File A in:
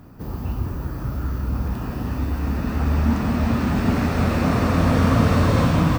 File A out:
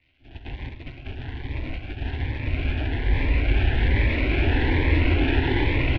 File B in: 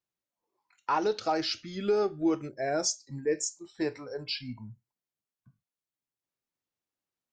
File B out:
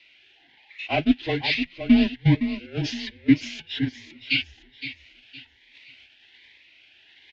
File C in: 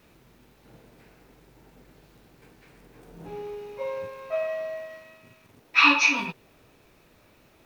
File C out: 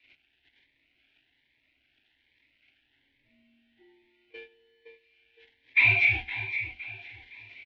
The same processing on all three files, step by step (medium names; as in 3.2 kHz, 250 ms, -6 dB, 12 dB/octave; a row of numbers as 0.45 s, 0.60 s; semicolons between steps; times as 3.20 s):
zero-crossing glitches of -20.5 dBFS; gate -24 dBFS, range -29 dB; in parallel at -1.5 dB: compression, threshold -29 dBFS; on the sum: saturation -14 dBFS; static phaser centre 370 Hz, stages 6; on a send: feedback delay 514 ms, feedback 35%, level -10.5 dB; on the sum: mistuned SSB -180 Hz 220–3400 Hz; ten-band graphic EQ 250 Hz +7 dB, 500 Hz -11 dB, 2 kHz +9 dB; Shepard-style phaser rising 1.2 Hz; normalise loudness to -24 LUFS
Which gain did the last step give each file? +6.0 dB, +15.0 dB, -1.5 dB